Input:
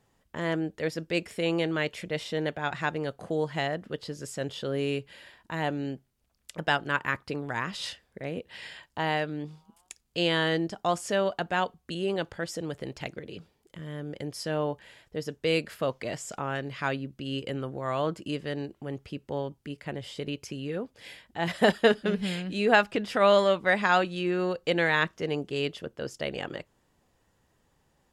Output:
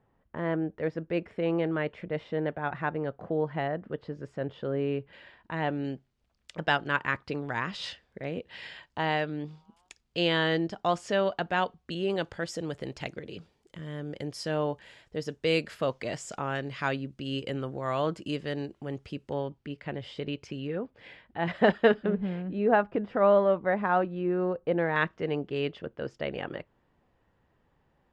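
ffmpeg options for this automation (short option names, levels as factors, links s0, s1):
-af "asetnsamples=n=441:p=0,asendcmd='5.13 lowpass f 2800;5.84 lowpass f 4800;12.1 lowpass f 7800;19.33 lowpass f 3700;20.67 lowpass f 2300;22.06 lowpass f 1100;24.96 lowpass f 2500',lowpass=1600"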